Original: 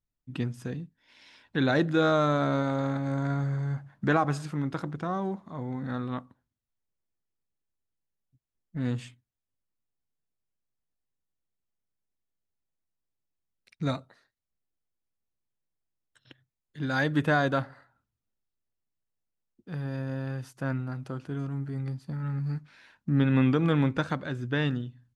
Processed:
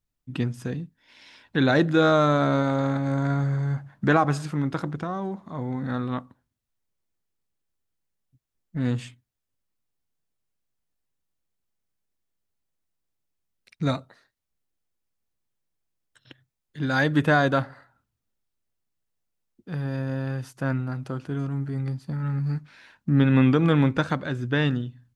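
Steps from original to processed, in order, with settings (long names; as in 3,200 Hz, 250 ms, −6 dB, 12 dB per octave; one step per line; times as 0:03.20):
0:04.97–0:05.43: downward compressor, threshold −31 dBFS, peak gain reduction 4.5 dB
level +4.5 dB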